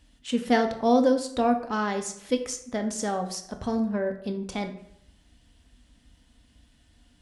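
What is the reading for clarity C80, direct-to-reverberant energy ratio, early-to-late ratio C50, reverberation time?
13.5 dB, 5.0 dB, 10.0 dB, 0.70 s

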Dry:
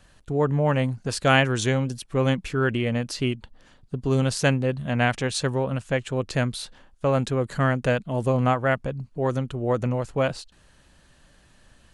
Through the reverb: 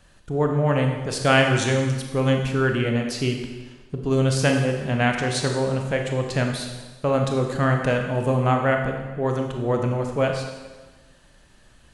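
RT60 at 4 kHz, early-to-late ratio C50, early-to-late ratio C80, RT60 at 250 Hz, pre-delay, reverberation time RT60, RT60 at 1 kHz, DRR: 1.2 s, 4.5 dB, 6.5 dB, 1.3 s, 16 ms, 1.3 s, 1.3 s, 2.5 dB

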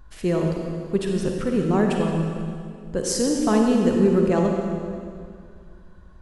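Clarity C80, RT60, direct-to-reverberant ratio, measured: 3.0 dB, 2.2 s, 1.0 dB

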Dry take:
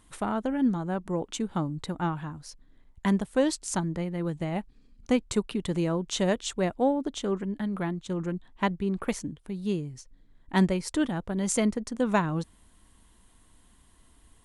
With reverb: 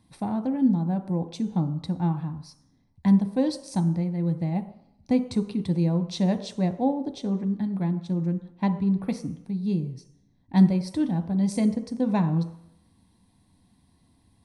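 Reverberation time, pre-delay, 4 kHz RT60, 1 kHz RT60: 0.75 s, 3 ms, 0.75 s, 0.75 s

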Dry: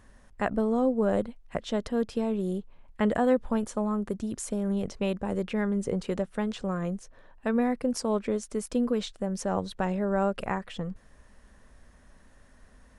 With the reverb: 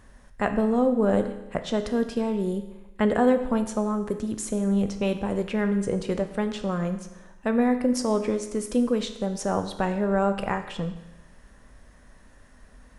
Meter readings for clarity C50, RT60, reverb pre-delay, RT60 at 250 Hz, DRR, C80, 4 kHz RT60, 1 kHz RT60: 10.0 dB, 1.0 s, 8 ms, 1.0 s, 7.0 dB, 12.0 dB, 1.0 s, 1.0 s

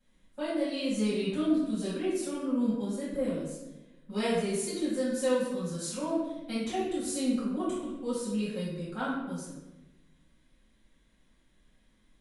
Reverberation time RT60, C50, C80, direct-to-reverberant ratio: 1.0 s, -0.5 dB, 3.0 dB, -12.5 dB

